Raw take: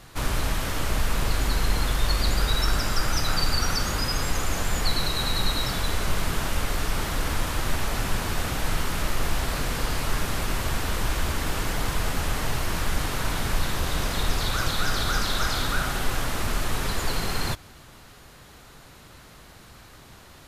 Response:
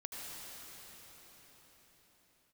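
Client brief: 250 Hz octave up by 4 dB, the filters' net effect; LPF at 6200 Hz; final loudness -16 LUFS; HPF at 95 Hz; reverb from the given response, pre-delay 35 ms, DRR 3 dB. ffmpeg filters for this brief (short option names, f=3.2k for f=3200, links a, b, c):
-filter_complex "[0:a]highpass=95,lowpass=6.2k,equalizer=f=250:t=o:g=5.5,asplit=2[a][b];[1:a]atrim=start_sample=2205,adelay=35[c];[b][c]afir=irnorm=-1:irlink=0,volume=-3dB[d];[a][d]amix=inputs=2:normalize=0,volume=10.5dB"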